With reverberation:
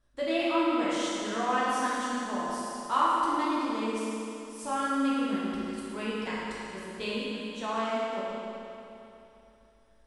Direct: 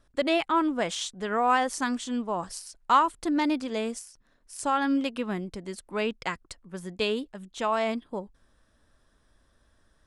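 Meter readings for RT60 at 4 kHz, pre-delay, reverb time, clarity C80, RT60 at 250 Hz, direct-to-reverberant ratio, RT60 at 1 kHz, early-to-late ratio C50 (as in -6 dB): 2.8 s, 9 ms, 3.0 s, -2.5 dB, 3.0 s, -8.5 dB, 3.0 s, -4.0 dB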